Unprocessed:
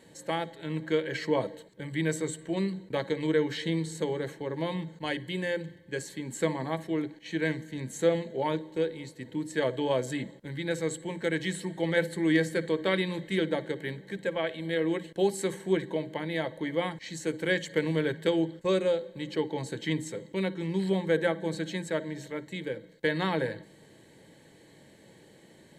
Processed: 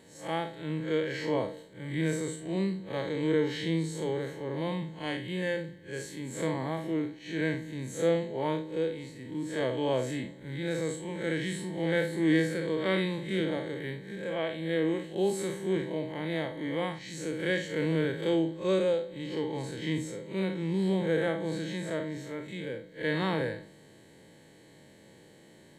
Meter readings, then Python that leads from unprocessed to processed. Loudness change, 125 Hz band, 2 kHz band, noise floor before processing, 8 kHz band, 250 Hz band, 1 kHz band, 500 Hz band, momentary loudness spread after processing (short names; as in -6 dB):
-1.0 dB, +0.5 dB, -2.0 dB, -56 dBFS, -2.5 dB, 0.0 dB, -2.0 dB, -1.0 dB, 9 LU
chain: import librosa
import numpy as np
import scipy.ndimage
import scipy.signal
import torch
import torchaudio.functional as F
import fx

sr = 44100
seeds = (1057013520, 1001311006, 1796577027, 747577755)

y = fx.spec_blur(x, sr, span_ms=108.0)
y = y * 10.0 ** (1.5 / 20.0)